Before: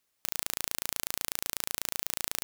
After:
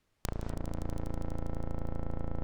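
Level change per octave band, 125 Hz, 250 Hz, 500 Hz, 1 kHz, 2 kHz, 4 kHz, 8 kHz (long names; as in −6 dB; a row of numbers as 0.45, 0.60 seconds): +16.5, +11.0, +5.5, −2.5, −14.0, −20.0, −20.5 decibels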